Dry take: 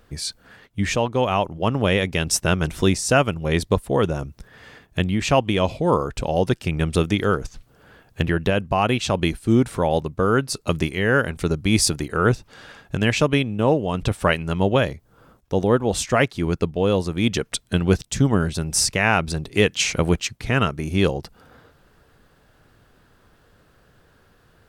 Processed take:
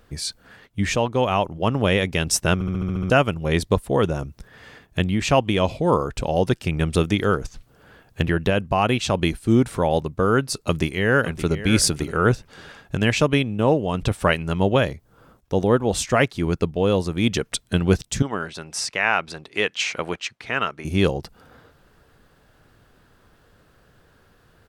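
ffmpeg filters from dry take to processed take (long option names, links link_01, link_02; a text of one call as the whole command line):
ffmpeg -i in.wav -filter_complex "[0:a]asplit=2[link_01][link_02];[link_02]afade=type=in:start_time=10.55:duration=0.01,afade=type=out:start_time=11.54:duration=0.01,aecho=0:1:570|1140:0.237137|0.0355706[link_03];[link_01][link_03]amix=inputs=2:normalize=0,asettb=1/sr,asplit=3[link_04][link_05][link_06];[link_04]atrim=end=18.224[link_07];[link_05]atrim=start=18.22:end=20.85,asetpts=PTS-STARTPTS,afade=type=in:duration=0.004:curve=qsin,afade=type=out:start_time=2.626:duration=0.004:curve=qsin,bandpass=frequency=1600:width_type=q:width=0.52[link_08];[link_06]atrim=start=20.846[link_09];[link_07][link_08]acrossfade=duration=0.004:curve1=hsin:curve2=qsin[link_10];[link_10][link_09]acrossfade=duration=0.004:curve1=qsin:curve2=hsin,asplit=9[link_11][link_12][link_13][link_14][link_15][link_16][link_17][link_18][link_19];[link_11]atrim=end=2.612[link_20];[link_12]atrim=start=2.538:end=2.612[link_21];[link_13]atrim=start=2.538:end=2.612[link_22];[link_14]atrim=start=2.538:end=2.612[link_23];[link_15]atrim=start=2.538:end=2.612[link_24];[link_16]atrim=start=2.538:end=2.612[link_25];[link_17]atrim=start=2.538:end=2.612[link_26];[link_18]atrim=start=2.538:end=2.612[link_27];[link_19]atrim=start=3.098[link_28];[link_20][link_21]acrossfade=duration=0.004:curve1=hsin:curve2=hsin[link_29];[link_29][link_22]acrossfade=duration=0.004:curve1=hsin:curve2=hsin[link_30];[link_30][link_23]acrossfade=duration=0.004:curve1=hsin:curve2=hsin[link_31];[link_31][link_24]acrossfade=duration=0.004:curve1=hsin:curve2=hsin[link_32];[link_32][link_25]acrossfade=duration=0.004:curve1=hsin:curve2=hsin[link_33];[link_33][link_26]acrossfade=duration=0.004:curve1=hsin:curve2=hsin[link_34];[link_34][link_27]acrossfade=duration=0.004:curve1=hsin:curve2=hsin[link_35];[link_35][link_28]acrossfade=duration=0.004:curve1=hsin:curve2=hsin" out.wav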